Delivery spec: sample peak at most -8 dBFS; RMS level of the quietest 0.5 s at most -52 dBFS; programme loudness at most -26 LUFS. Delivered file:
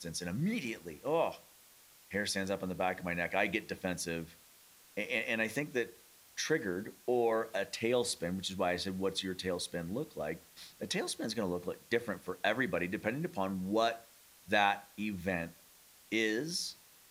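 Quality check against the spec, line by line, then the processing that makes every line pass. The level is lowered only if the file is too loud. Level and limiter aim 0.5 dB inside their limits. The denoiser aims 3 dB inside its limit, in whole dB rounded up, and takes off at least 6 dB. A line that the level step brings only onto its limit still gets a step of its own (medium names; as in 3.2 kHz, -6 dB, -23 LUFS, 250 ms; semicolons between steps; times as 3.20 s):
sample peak -13.5 dBFS: pass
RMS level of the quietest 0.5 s -61 dBFS: pass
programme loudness -35.0 LUFS: pass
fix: none needed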